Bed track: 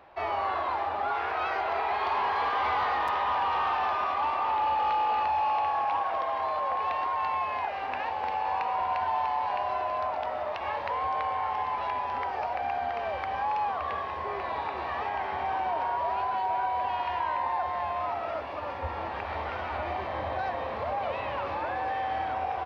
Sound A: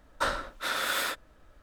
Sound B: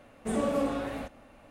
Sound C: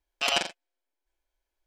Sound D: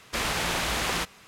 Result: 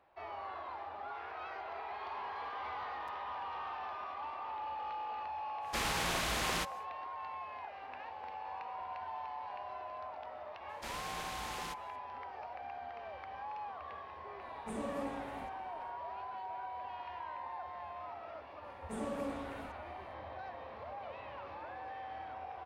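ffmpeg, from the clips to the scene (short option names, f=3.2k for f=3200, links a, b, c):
-filter_complex "[4:a]asplit=2[a][b];[2:a]asplit=2[c][d];[0:a]volume=-14.5dB[e];[a]atrim=end=1.27,asetpts=PTS-STARTPTS,volume=-7dB,afade=t=in:d=0.1,afade=t=out:st=1.17:d=0.1,adelay=5600[f];[b]atrim=end=1.27,asetpts=PTS-STARTPTS,volume=-16dB,afade=t=in:d=0.004:c=hsin,afade=t=out:st=1.266:d=0.004:c=hsin,adelay=10690[g];[c]atrim=end=1.5,asetpts=PTS-STARTPTS,volume=-11.5dB,afade=t=in:d=0.004:c=hsin,afade=t=out:st=1.496:d=0.004:c=hsin,adelay=14410[h];[d]atrim=end=1.5,asetpts=PTS-STARTPTS,volume=-11dB,afade=t=in:d=0.004:c=hsin,afade=t=out:st=1.496:d=0.004:c=hsin,adelay=18640[i];[e][f][g][h][i]amix=inputs=5:normalize=0"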